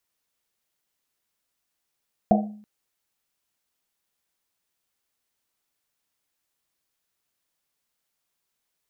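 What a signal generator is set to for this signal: Risset drum length 0.33 s, pitch 210 Hz, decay 0.60 s, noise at 690 Hz, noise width 170 Hz, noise 35%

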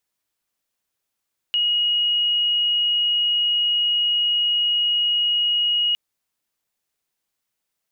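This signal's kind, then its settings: tone sine 2890 Hz -17 dBFS 4.41 s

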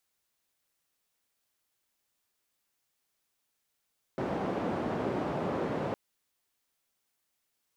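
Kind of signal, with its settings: noise band 140–560 Hz, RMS -32.5 dBFS 1.76 s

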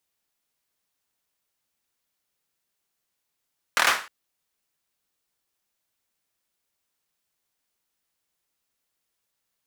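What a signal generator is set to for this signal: hand clap length 0.31 s, bursts 5, apart 25 ms, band 1400 Hz, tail 0.37 s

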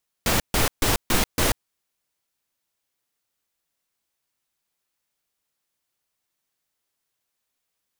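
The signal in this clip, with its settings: noise bursts pink, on 0.14 s, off 0.14 s, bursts 5, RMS -20 dBFS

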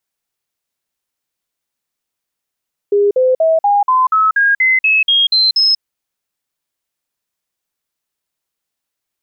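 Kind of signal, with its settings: stepped sine 407 Hz up, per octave 3, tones 12, 0.19 s, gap 0.05 s -8.5 dBFS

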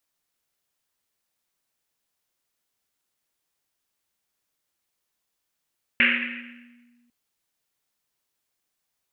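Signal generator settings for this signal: Risset drum, pitch 240 Hz, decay 1.87 s, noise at 2200 Hz, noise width 1200 Hz, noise 75%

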